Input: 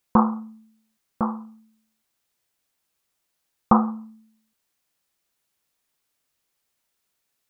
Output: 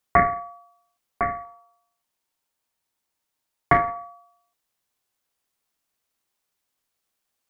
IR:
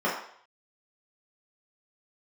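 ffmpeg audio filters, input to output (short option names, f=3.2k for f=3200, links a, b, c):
-filter_complex "[0:a]asettb=1/sr,asplit=3[a][b][c];[a]atrim=end=1.444[d];[b]atrim=start=1.44:end=3.96,asetpts=PTS-STARTPTS,afade=t=in:d=0.004:c=qsin,afade=t=out:st=2.516:d=0.004:c=qsin,aeval=exprs='if(lt(val(0),0),0.708*val(0),val(0))':c=same[e];[c]atrim=start=3.956[f];[d][e]acrossfade=d=0.004:c1=hsin:c2=qsin[g];[g][f]acrossfade=d=0.004:c1=qsin:c2=hsin,equalizer=f=120:w=0.39:g=5,aeval=exprs='val(0)*sin(2*PI*920*n/s)':c=same"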